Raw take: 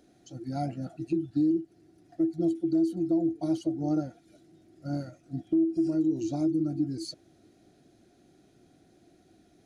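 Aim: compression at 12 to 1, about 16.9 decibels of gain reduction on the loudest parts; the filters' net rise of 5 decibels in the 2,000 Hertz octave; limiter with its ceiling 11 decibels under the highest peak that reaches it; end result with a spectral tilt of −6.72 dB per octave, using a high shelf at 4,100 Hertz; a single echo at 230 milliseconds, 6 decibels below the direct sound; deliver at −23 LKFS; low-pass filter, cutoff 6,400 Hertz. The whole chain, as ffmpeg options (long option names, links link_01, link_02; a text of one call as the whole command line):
ffmpeg -i in.wav -af "lowpass=6400,equalizer=frequency=2000:width_type=o:gain=8.5,highshelf=frequency=4100:gain=-4.5,acompressor=threshold=-39dB:ratio=12,alimiter=level_in=15dB:limit=-24dB:level=0:latency=1,volume=-15dB,aecho=1:1:230:0.501,volume=23.5dB" out.wav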